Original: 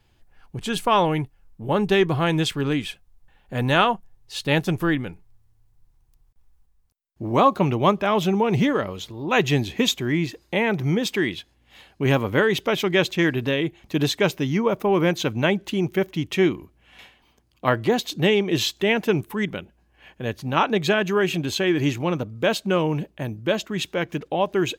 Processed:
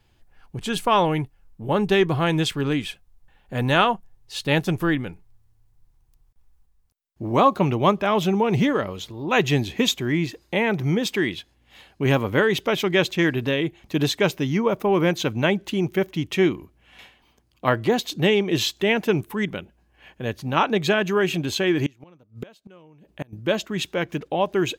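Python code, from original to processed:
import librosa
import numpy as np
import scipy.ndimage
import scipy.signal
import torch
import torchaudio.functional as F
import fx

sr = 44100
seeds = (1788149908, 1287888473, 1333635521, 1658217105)

y = fx.gate_flip(x, sr, shuts_db=-19.0, range_db=-28, at=(21.86, 23.33))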